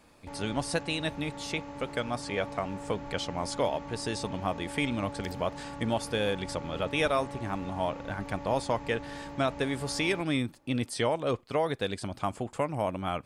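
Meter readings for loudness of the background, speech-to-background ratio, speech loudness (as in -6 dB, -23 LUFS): -42.5 LUFS, 10.5 dB, -32.0 LUFS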